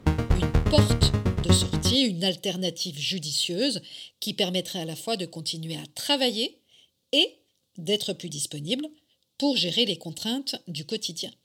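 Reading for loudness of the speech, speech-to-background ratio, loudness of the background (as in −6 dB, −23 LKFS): −27.0 LKFS, −2.5 dB, −24.5 LKFS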